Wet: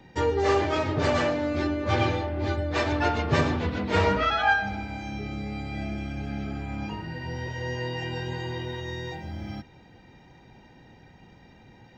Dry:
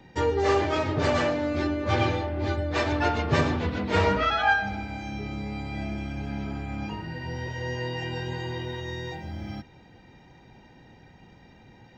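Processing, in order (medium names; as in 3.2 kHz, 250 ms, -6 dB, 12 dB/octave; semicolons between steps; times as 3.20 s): 5.18–6.61 s: band-stop 970 Hz, Q 8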